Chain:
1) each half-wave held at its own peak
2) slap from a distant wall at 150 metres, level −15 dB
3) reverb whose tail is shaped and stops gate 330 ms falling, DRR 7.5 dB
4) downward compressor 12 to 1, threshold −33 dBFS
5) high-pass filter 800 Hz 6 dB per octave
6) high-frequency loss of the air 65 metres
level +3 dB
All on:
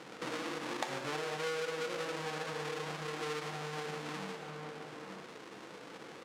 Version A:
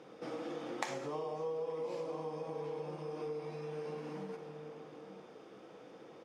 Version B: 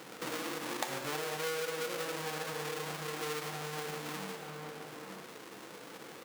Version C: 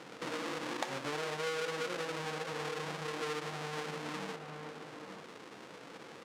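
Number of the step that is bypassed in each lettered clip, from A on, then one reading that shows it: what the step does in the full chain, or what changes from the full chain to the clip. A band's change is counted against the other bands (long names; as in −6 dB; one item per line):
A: 1, distortion level −5 dB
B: 6, 8 kHz band +5.5 dB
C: 3, change in momentary loudness spread +1 LU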